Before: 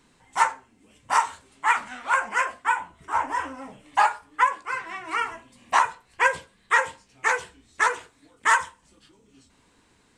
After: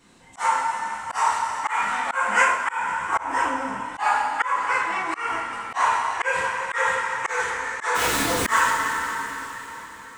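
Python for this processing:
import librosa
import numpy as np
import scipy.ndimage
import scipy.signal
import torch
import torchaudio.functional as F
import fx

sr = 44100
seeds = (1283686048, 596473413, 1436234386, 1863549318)

y = fx.zero_step(x, sr, step_db=-25.0, at=(7.95, 8.58))
y = fx.rev_double_slope(y, sr, seeds[0], early_s=0.5, late_s=4.4, knee_db=-16, drr_db=-6.5)
y = fx.auto_swell(y, sr, attack_ms=231.0)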